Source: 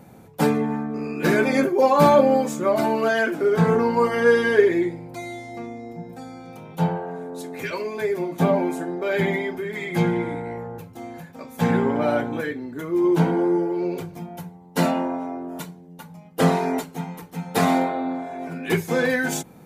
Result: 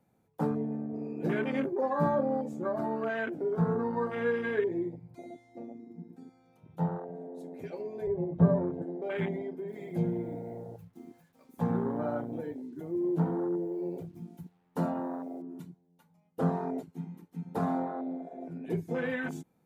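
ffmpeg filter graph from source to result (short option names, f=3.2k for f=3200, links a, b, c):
-filter_complex "[0:a]asettb=1/sr,asplit=3[a][b][c];[a]atrim=end=8.074[d];[b]atrim=start=8.07:end=8.82,asetpts=PTS-STARTPTS,afade=t=in:d=0.004:c=qsin,afade=t=out:st=0.746:d=0.004:c=qsin,lowpass=3.7k,aemphasis=mode=reproduction:type=riaa,aecho=1:1:1.9:0.58,atrim=end_sample=33075[e];[c]atrim=start=8.816[f];[d][e]acrossfade=d=0.004:c1=hsin:c2=qsin[g];[g][f]acrossfade=d=0.004:c1=qsin:c2=hsin,asettb=1/sr,asplit=3[h][i][j];[h]atrim=end=9.684[k];[i]atrim=start=9.68:end=15.42,asetpts=PTS-STARTPTS,afade=t=in:d=0.004:c=qsin,afade=t=out:st=5.736:d=0.004:c=qsin,acrusher=bits=7:mix=0:aa=0.5,highshelf=f=8k:g=5.5[l];[j]atrim=start=15.416[m];[k][l]acrossfade=d=0.004:c1=hsin:c2=qsin[n];[n][m]acrossfade=d=0.004:c1=qsin:c2=hsin,afwtdn=0.0631,acrossover=split=220[o][p];[p]acompressor=threshold=-30dB:ratio=1.5[q];[o][q]amix=inputs=2:normalize=0,volume=-7.5dB"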